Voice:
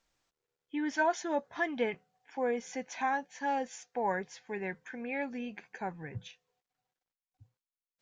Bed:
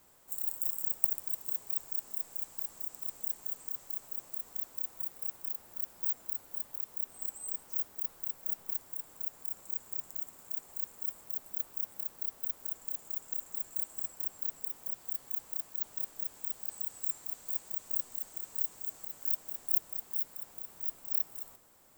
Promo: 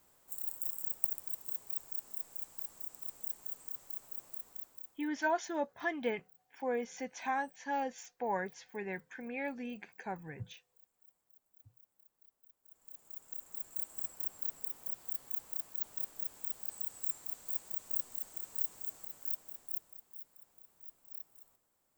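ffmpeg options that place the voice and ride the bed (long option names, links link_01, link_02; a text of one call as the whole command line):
ffmpeg -i stem1.wav -i stem2.wav -filter_complex "[0:a]adelay=4250,volume=-3dB[link_01];[1:a]volume=21.5dB,afade=type=out:start_time=4.3:duration=0.82:silence=0.0668344,afade=type=in:start_time=12.63:duration=1.42:silence=0.0501187,afade=type=out:start_time=18.82:duration=1.2:silence=0.211349[link_02];[link_01][link_02]amix=inputs=2:normalize=0" out.wav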